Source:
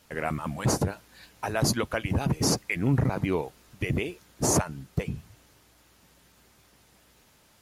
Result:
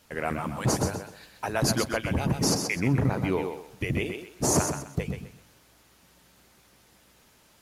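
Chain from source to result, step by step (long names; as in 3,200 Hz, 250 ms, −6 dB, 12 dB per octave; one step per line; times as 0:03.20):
mains-hum notches 50/100/150 Hz
on a send: feedback echo with a high-pass in the loop 128 ms, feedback 28%, high-pass 190 Hz, level −6 dB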